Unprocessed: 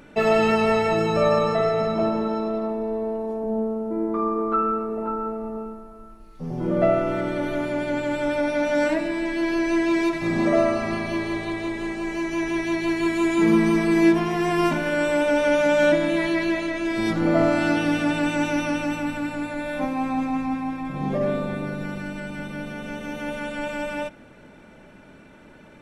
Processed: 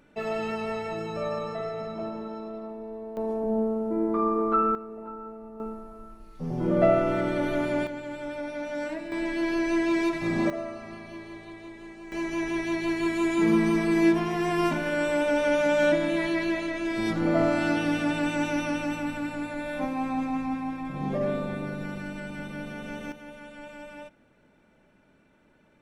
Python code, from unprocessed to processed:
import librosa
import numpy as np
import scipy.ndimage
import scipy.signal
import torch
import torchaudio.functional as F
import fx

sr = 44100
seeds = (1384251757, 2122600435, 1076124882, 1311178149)

y = fx.gain(x, sr, db=fx.steps((0.0, -11.5), (3.17, -1.0), (4.75, -12.0), (5.6, -1.0), (7.87, -11.0), (9.12, -3.5), (10.5, -15.0), (12.12, -4.0), (23.12, -14.0)))